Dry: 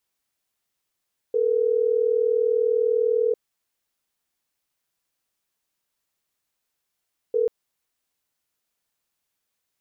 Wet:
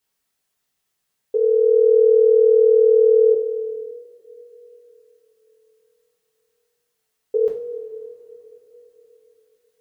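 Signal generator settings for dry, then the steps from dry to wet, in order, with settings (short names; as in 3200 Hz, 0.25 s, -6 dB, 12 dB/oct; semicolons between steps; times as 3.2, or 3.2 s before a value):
call progress tone ringback tone, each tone -21 dBFS 6.14 s
two-slope reverb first 0.4 s, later 4.1 s, from -18 dB, DRR -2.5 dB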